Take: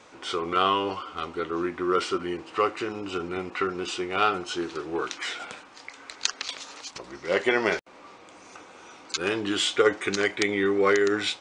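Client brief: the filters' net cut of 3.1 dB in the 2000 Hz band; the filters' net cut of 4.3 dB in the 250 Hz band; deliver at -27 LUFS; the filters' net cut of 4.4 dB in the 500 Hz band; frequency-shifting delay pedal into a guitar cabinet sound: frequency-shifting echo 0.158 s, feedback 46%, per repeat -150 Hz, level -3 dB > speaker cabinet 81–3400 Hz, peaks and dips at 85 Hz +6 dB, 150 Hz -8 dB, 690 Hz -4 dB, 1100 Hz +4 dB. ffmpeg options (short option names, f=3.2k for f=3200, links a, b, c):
-filter_complex "[0:a]equalizer=f=250:t=o:g=-4,equalizer=f=500:t=o:g=-3.5,equalizer=f=2k:t=o:g=-4,asplit=7[a][b][c][d][e][f][g];[b]adelay=158,afreqshift=-150,volume=-3dB[h];[c]adelay=316,afreqshift=-300,volume=-9.7dB[i];[d]adelay=474,afreqshift=-450,volume=-16.5dB[j];[e]adelay=632,afreqshift=-600,volume=-23.2dB[k];[f]adelay=790,afreqshift=-750,volume=-30dB[l];[g]adelay=948,afreqshift=-900,volume=-36.7dB[m];[a][h][i][j][k][l][m]amix=inputs=7:normalize=0,highpass=81,equalizer=f=85:t=q:w=4:g=6,equalizer=f=150:t=q:w=4:g=-8,equalizer=f=690:t=q:w=4:g=-4,equalizer=f=1.1k:t=q:w=4:g=4,lowpass=f=3.4k:w=0.5412,lowpass=f=3.4k:w=1.3066,volume=1dB"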